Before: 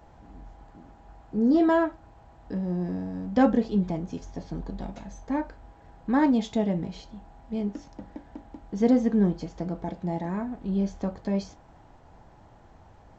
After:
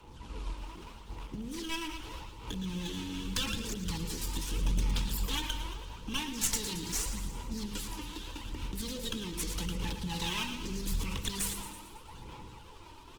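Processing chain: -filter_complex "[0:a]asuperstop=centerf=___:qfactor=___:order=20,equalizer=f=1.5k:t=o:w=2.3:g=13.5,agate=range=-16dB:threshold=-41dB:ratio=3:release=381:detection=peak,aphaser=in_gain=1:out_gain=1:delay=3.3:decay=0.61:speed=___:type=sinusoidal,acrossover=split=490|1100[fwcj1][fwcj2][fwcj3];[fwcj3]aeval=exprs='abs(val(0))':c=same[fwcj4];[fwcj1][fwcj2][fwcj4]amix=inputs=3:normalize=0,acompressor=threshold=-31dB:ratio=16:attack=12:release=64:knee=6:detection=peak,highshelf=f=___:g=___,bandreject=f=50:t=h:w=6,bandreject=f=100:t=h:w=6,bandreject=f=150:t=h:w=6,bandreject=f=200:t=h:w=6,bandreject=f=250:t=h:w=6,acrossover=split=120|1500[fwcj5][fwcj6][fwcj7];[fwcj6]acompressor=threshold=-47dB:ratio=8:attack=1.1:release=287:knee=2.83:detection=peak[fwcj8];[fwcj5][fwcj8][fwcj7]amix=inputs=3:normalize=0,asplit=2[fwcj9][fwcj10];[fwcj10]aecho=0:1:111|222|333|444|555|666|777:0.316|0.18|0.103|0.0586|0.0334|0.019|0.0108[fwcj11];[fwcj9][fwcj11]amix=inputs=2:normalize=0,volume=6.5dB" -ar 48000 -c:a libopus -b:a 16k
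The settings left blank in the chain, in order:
670, 2.1, 0.81, 4k, 9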